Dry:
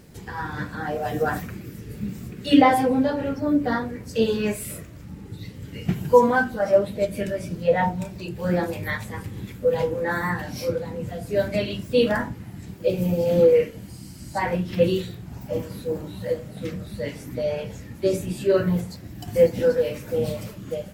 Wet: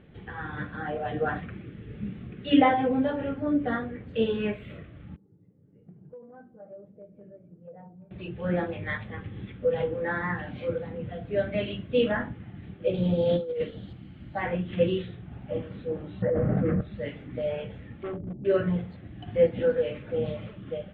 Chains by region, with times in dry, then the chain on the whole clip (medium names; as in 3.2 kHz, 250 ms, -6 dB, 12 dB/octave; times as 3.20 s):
5.16–8.11 s: ladder band-pass 260 Hz, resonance 25% + compression 10:1, threshold -35 dBFS + peaking EQ 240 Hz -9 dB 0.74 oct
12.94–13.93 s: resonant high shelf 3.1 kHz +8 dB, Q 3 + compressor with a negative ratio -20 dBFS, ratio -0.5
16.22–16.81 s: low-pass 1.6 kHz 24 dB/octave + level flattener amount 100%
18.03–18.45 s: Gaussian low-pass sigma 14 samples + hard clipper -27 dBFS
whole clip: elliptic low-pass 3.4 kHz, stop band 40 dB; band-stop 960 Hz, Q 8; trim -3.5 dB